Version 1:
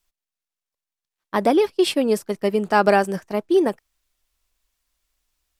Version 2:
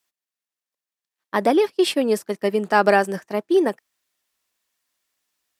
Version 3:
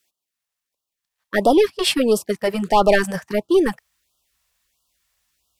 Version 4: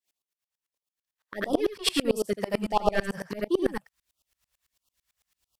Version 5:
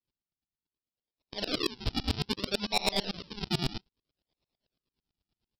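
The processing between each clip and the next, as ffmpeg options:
ffmpeg -i in.wav -af "highpass=180,equalizer=frequency=1800:width_type=o:width=0.21:gain=4.5" out.wav
ffmpeg -i in.wav -af "asoftclip=type=tanh:threshold=-10.5dB,asubboost=boost=6.5:cutoff=110,afftfilt=real='re*(1-between(b*sr/1024,270*pow(2000/270,0.5+0.5*sin(2*PI*1.5*pts/sr))/1.41,270*pow(2000/270,0.5+0.5*sin(2*PI*1.5*pts/sr))*1.41))':imag='im*(1-between(b*sr/1024,270*pow(2000/270,0.5+0.5*sin(2*PI*1.5*pts/sr))/1.41,270*pow(2000/270,0.5+0.5*sin(2*PI*1.5*pts/sr))*1.41))':win_size=1024:overlap=0.75,volume=6dB" out.wav
ffmpeg -i in.wav -filter_complex "[0:a]acompressor=threshold=-17dB:ratio=2.5,asplit=2[link_01][link_02];[link_02]aecho=0:1:81:0.631[link_03];[link_01][link_03]amix=inputs=2:normalize=0,aeval=exprs='val(0)*pow(10,-28*if(lt(mod(-9*n/s,1),2*abs(-9)/1000),1-mod(-9*n/s,1)/(2*abs(-9)/1000),(mod(-9*n/s,1)-2*abs(-9)/1000)/(1-2*abs(-9)/1000))/20)':channel_layout=same" out.wav
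ffmpeg -i in.wav -af "aresample=11025,acrusher=samples=14:mix=1:aa=0.000001:lfo=1:lforange=14:lforate=0.62,aresample=44100,aexciter=amount=3.6:drive=7.5:freq=2700,asoftclip=type=hard:threshold=-13dB,volume=-6dB" out.wav

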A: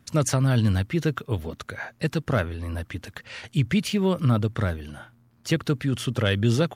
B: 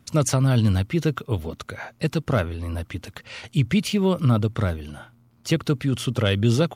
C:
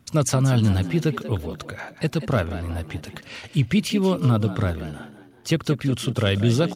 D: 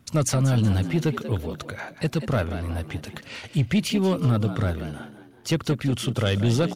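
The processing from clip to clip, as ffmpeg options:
ffmpeg -i in.wav -af "equalizer=frequency=1700:width=6:gain=-7.5,volume=2dB" out.wav
ffmpeg -i in.wav -filter_complex "[0:a]asplit=5[link_01][link_02][link_03][link_04][link_05];[link_02]adelay=186,afreqshift=66,volume=-13dB[link_06];[link_03]adelay=372,afreqshift=132,volume=-20.5dB[link_07];[link_04]adelay=558,afreqshift=198,volume=-28.1dB[link_08];[link_05]adelay=744,afreqshift=264,volume=-35.6dB[link_09];[link_01][link_06][link_07][link_08][link_09]amix=inputs=5:normalize=0" out.wav
ffmpeg -i in.wav -af "asoftclip=type=tanh:threshold=-13dB" out.wav

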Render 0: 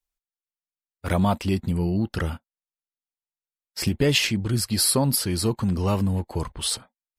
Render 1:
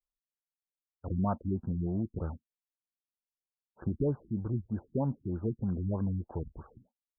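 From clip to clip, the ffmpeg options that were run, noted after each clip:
ffmpeg -i in.wav -af "afftfilt=real='re*lt(b*sr/1024,320*pow(1700/320,0.5+0.5*sin(2*PI*3.2*pts/sr)))':imag='im*lt(b*sr/1024,320*pow(1700/320,0.5+0.5*sin(2*PI*3.2*pts/sr)))':win_size=1024:overlap=0.75,volume=-8.5dB" out.wav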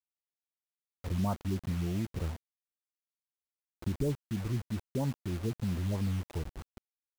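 ffmpeg -i in.wav -af "lowshelf=frequency=81:gain=10,acrusher=bits=6:mix=0:aa=0.000001,volume=-3dB" out.wav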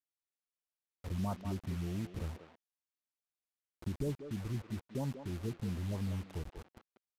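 ffmpeg -i in.wav -filter_complex "[0:a]asplit=2[link_01][link_02];[link_02]adelay=190,highpass=300,lowpass=3400,asoftclip=type=hard:threshold=-29.5dB,volume=-7dB[link_03];[link_01][link_03]amix=inputs=2:normalize=0,aresample=32000,aresample=44100,volume=-5dB" out.wav

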